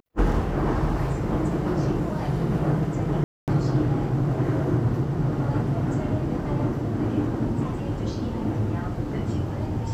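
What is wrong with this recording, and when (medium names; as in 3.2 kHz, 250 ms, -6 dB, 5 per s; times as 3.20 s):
3.24–3.48 s: dropout 238 ms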